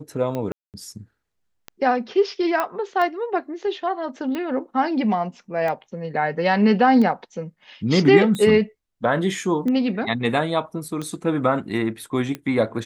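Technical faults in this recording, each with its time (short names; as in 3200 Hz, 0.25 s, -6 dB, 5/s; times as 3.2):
tick 45 rpm -16 dBFS
0.52–0.74 gap 0.218 s
2.6 pop -10 dBFS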